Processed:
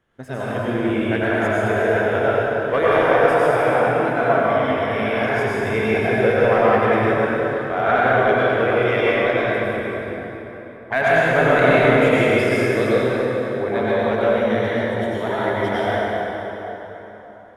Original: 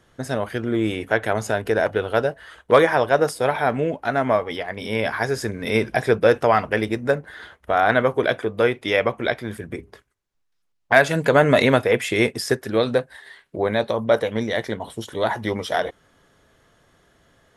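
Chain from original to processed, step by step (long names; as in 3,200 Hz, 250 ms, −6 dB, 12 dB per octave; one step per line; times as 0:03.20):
leveller curve on the samples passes 1
high shelf with overshoot 3,500 Hz −7 dB, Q 1.5
dense smooth reverb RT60 4 s, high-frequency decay 0.65×, pre-delay 80 ms, DRR −9 dB
level −10 dB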